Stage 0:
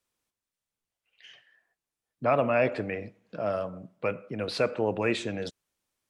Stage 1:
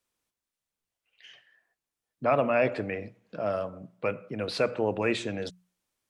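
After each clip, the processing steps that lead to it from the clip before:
mains-hum notches 60/120/180 Hz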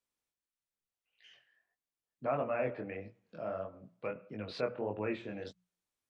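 chorus effect 1.6 Hz, delay 18.5 ms, depth 6.3 ms
treble cut that deepens with the level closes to 2,100 Hz, closed at −28.5 dBFS
level −6 dB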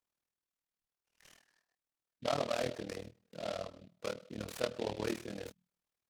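amplitude modulation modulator 39 Hz, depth 85%
short delay modulated by noise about 3,000 Hz, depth 0.068 ms
level +3 dB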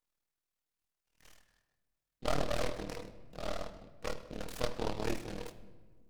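half-wave rectification
rectangular room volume 1,300 cubic metres, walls mixed, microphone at 0.52 metres
level +4 dB

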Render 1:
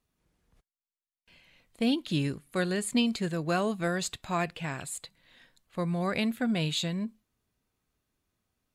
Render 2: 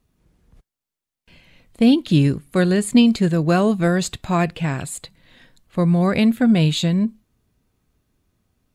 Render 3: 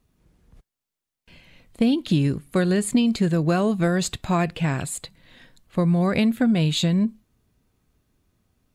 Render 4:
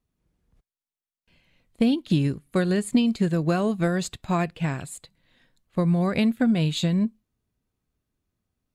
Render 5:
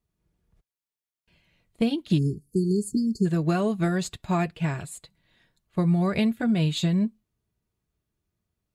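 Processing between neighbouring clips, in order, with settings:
low-shelf EQ 440 Hz +9 dB; level +6.5 dB
downward compressor 6 to 1, threshold −16 dBFS, peak gain reduction 7.5 dB
expander for the loud parts 1.5 to 1, over −39 dBFS
time-frequency box erased 0:02.18–0:03.26, 460–4,300 Hz; notch comb filter 260 Hz

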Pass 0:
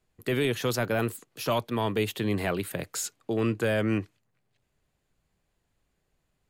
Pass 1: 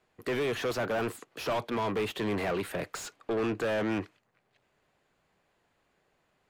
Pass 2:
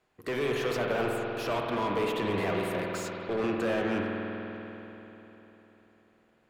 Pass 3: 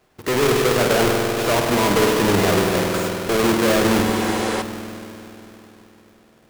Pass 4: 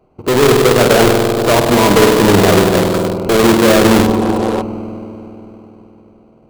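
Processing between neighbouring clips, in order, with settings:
mid-hump overdrive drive 25 dB, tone 1,500 Hz, clips at −15.5 dBFS; level −6.5 dB
spring reverb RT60 3.7 s, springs 49 ms, chirp 45 ms, DRR −0.5 dB; level −1.5 dB
each half-wave held at its own peak; healed spectral selection 0:04.09–0:04.59, 320–11,000 Hz before; level +8 dB
adaptive Wiener filter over 25 samples; level +8.5 dB

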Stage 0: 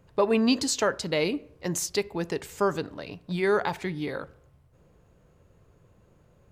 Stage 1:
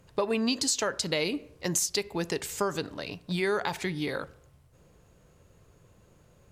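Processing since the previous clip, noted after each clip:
parametric band 8,600 Hz +8.5 dB 2.9 octaves
downward compressor 4 to 1, threshold −25 dBFS, peak gain reduction 8 dB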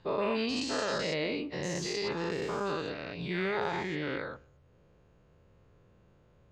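every bin's largest magnitude spread in time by 240 ms
high-frequency loss of the air 180 metres
level −8.5 dB

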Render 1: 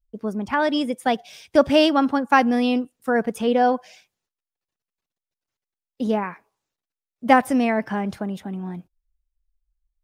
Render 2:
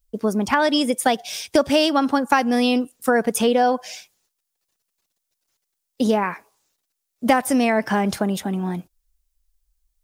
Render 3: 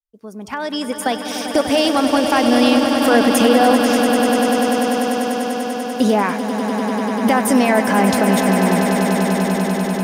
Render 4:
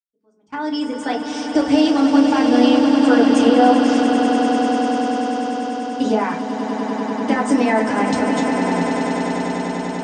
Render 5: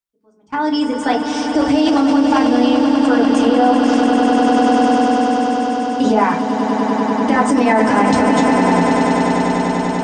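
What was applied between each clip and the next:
bass and treble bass −4 dB, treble +9 dB; downward compressor 4 to 1, threshold −24 dBFS, peak gain reduction 12.5 dB; level +8.5 dB
fade in at the beginning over 2.30 s; brickwall limiter −12 dBFS, peak gain reduction 8 dB; on a send: echo that builds up and dies away 98 ms, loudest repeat 8, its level −10 dB; on the sum: level +5 dB
noise gate with hold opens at −23 dBFS; Butterworth low-pass 8,500 Hz 96 dB per octave; feedback delay network reverb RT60 0.33 s, low-frequency decay 1.45×, high-frequency decay 0.6×, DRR −2.5 dB; level −8 dB
low-shelf EQ 90 Hz +10.5 dB; in parallel at 0 dB: compressor whose output falls as the input rises −17 dBFS, ratio −0.5; on the sum: parametric band 980 Hz +3.5 dB 0.83 octaves; level −3 dB

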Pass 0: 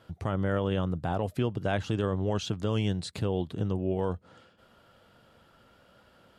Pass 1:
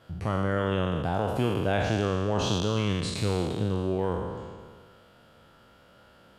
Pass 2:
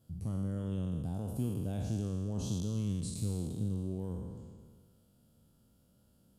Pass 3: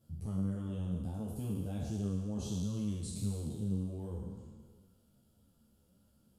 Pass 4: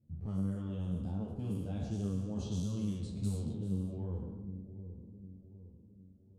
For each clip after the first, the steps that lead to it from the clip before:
peak hold with a decay on every bin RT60 1.72 s
drawn EQ curve 240 Hz 0 dB, 360 Hz −9 dB, 1,900 Hz −24 dB, 10,000 Hz +6 dB; level −5.5 dB
string-ensemble chorus; level +1.5 dB
low-pass that shuts in the quiet parts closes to 300 Hz, open at −31 dBFS; delay with a low-pass on its return 758 ms, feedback 44%, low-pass 430 Hz, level −9 dB

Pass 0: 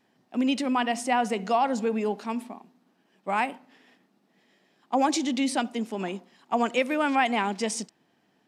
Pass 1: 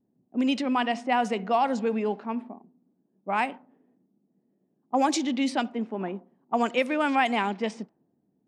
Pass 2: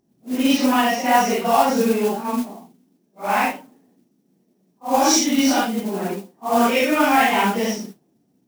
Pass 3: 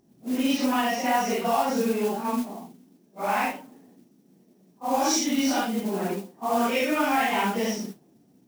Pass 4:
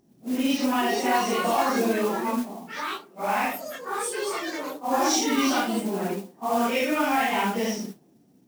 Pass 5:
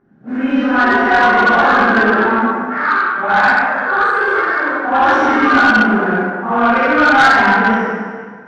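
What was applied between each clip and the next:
low-pass that shuts in the quiet parts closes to 310 Hz, open at −19.5 dBFS
random phases in long frames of 200 ms; parametric band 5,700 Hz +15 dB 0.23 octaves; noise that follows the level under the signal 17 dB; level +7.5 dB
downward compressor 2 to 1, threshold −35 dBFS, peak gain reduction 13.5 dB; level +4.5 dB
delay with pitch and tempo change per echo 632 ms, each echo +7 semitones, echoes 2, each echo −6 dB
low-pass with resonance 1,500 Hz, resonance Q 6.8; dense smooth reverb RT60 1.7 s, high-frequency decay 0.85×, DRR −10 dB; soft clipping −4.5 dBFS, distortion −14 dB

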